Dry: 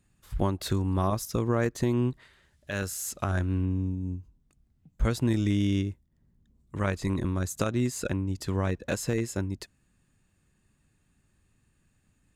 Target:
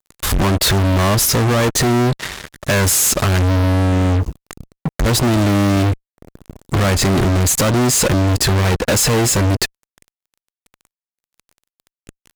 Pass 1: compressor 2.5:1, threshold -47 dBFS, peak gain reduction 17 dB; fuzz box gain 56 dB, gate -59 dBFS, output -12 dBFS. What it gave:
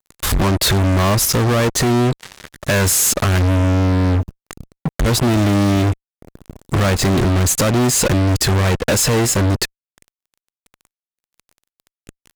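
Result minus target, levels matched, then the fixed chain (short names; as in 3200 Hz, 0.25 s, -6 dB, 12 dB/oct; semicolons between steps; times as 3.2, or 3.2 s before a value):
compressor: peak gain reduction +4.5 dB
compressor 2.5:1, threshold -39.5 dBFS, peak gain reduction 12.5 dB; fuzz box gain 56 dB, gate -59 dBFS, output -12 dBFS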